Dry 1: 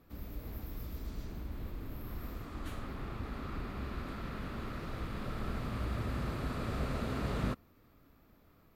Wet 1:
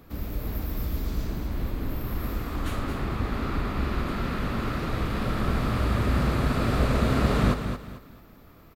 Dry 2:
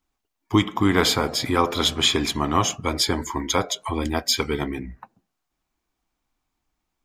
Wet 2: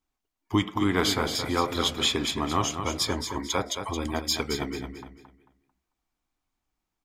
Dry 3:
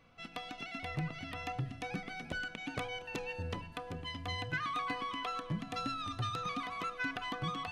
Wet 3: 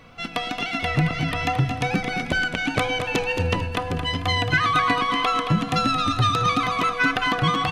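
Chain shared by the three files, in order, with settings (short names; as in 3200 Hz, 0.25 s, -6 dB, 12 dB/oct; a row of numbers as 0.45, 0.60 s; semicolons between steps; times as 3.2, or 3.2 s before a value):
wow and flutter 33 cents; on a send: feedback echo 0.222 s, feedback 30%, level -8 dB; on the sum: normalise peaks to -9 dBFS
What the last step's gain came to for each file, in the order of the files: +11.5, -5.5, +16.0 dB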